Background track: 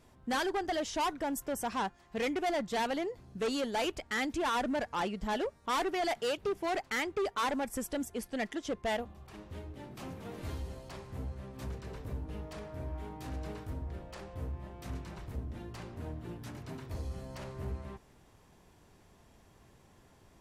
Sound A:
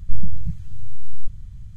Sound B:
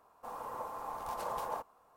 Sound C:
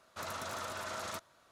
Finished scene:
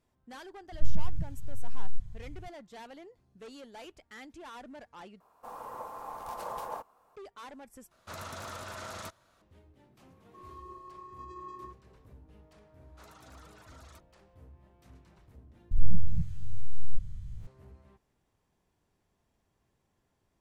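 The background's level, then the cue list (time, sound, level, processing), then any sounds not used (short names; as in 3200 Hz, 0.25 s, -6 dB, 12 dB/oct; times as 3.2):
background track -15 dB
0.72 add A -7 dB
5.2 replace with B -0.5 dB
7.91 replace with C -2 dB + low shelf 130 Hz +11.5 dB
10.1 add B -6 dB + vocoder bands 16, square 364 Hz
12.81 add C -13.5 dB + reverb removal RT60 0.95 s
15.71 replace with A -4.5 dB + spectral swells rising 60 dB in 0.39 s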